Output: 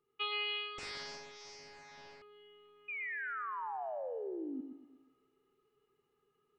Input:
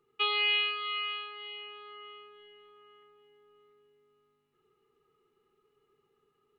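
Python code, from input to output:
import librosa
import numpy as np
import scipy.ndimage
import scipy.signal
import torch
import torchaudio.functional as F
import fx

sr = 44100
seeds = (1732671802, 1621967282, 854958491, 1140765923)

p1 = fx.rider(x, sr, range_db=3, speed_s=2.0)
p2 = fx.spec_paint(p1, sr, seeds[0], shape='fall', start_s=2.88, length_s=1.73, low_hz=250.0, high_hz=2500.0, level_db=-33.0)
p3 = fx.comb_fb(p2, sr, f0_hz=66.0, decay_s=1.8, harmonics='all', damping=0.0, mix_pct=50)
p4 = p3 + fx.echo_feedback(p3, sr, ms=120, feedback_pct=42, wet_db=-7.0, dry=0)
p5 = fx.doppler_dist(p4, sr, depth_ms=0.77, at=(0.78, 2.22))
y = p5 * 10.0 ** (-2.5 / 20.0)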